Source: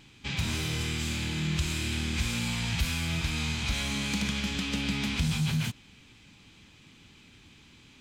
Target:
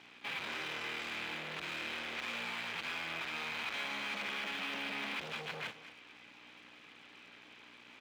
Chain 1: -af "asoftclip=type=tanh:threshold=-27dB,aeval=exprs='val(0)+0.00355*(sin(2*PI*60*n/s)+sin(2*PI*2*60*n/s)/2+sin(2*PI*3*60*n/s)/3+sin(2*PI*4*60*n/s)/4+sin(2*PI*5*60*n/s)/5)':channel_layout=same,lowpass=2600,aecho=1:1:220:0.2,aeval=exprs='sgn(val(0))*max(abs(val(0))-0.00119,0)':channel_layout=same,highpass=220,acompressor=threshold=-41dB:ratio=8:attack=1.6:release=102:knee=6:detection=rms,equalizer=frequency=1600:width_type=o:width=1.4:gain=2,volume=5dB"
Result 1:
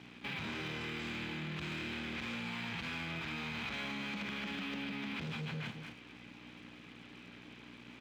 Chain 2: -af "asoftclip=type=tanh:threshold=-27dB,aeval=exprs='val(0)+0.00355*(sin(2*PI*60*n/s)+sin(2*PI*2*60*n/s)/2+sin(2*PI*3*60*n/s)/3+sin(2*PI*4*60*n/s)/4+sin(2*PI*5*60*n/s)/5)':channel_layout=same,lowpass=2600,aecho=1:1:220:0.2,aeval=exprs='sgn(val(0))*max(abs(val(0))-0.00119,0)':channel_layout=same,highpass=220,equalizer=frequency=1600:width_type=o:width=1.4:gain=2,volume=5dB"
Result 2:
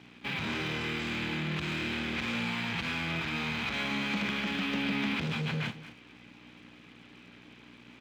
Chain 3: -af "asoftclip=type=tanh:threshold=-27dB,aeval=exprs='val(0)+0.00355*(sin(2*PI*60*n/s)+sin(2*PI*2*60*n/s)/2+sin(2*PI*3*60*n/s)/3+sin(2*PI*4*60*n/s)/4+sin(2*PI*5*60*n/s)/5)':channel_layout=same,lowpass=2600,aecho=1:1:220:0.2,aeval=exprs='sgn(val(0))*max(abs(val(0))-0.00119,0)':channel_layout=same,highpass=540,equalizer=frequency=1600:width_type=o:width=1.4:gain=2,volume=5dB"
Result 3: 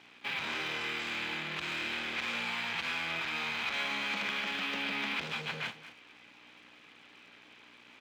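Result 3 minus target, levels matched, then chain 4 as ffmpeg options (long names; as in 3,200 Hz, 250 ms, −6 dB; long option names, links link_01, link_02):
soft clipping: distortion −7 dB
-af "asoftclip=type=tanh:threshold=-35.5dB,aeval=exprs='val(0)+0.00355*(sin(2*PI*60*n/s)+sin(2*PI*2*60*n/s)/2+sin(2*PI*3*60*n/s)/3+sin(2*PI*4*60*n/s)/4+sin(2*PI*5*60*n/s)/5)':channel_layout=same,lowpass=2600,aecho=1:1:220:0.2,aeval=exprs='sgn(val(0))*max(abs(val(0))-0.00119,0)':channel_layout=same,highpass=540,equalizer=frequency=1600:width_type=o:width=1.4:gain=2,volume=5dB"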